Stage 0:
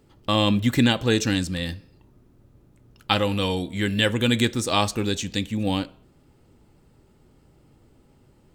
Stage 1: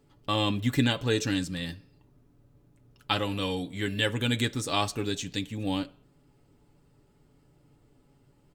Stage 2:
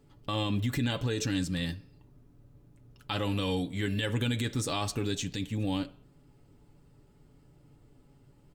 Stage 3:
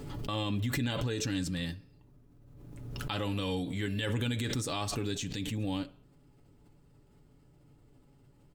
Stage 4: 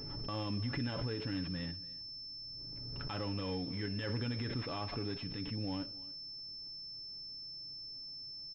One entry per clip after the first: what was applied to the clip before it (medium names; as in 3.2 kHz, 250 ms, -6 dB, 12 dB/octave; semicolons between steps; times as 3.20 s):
comb 7 ms, depth 50%; trim -6.5 dB
bass shelf 190 Hz +5 dB; peak limiter -21 dBFS, peak gain reduction 11 dB
swell ahead of each attack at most 33 dB/s; trim -3 dB
delay 286 ms -21 dB; class-D stage that switches slowly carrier 5.3 kHz; trim -5 dB